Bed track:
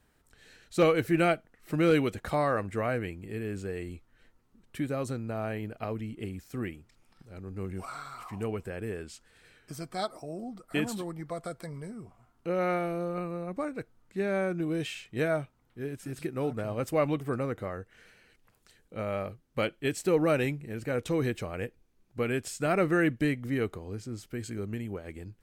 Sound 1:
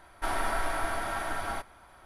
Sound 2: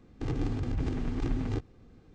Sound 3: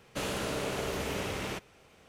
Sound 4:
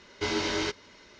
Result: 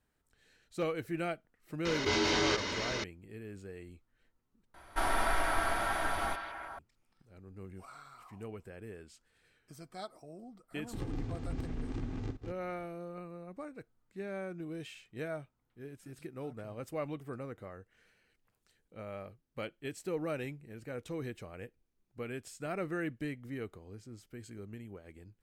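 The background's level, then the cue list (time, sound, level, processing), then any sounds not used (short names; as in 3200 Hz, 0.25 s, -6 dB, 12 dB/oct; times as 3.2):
bed track -11 dB
1.85 add 4 -2 dB + fast leveller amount 70%
4.74 replace with 1 -0.5 dB + delay with a stepping band-pass 0.161 s, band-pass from 3200 Hz, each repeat -0.7 oct, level -4 dB
10.72 add 2 -8 dB + reverse delay 0.15 s, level -5.5 dB
not used: 3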